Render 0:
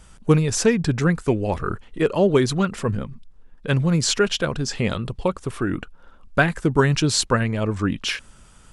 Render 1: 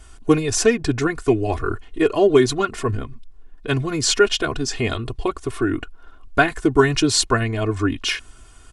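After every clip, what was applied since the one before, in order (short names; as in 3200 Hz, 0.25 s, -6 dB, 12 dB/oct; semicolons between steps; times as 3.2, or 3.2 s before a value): comb 2.8 ms, depth 87%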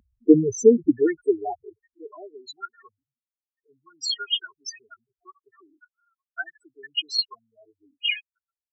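loudest bins only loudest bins 4; high-pass sweep 210 Hz -> 2600 Hz, 0.49–2.49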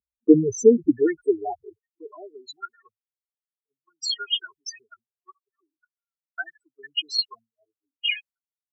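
expander -43 dBFS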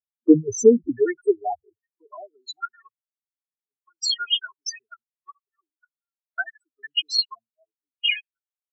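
spectral noise reduction 21 dB; in parallel at -2 dB: compressor, threshold -28 dBFS, peak gain reduction 18.5 dB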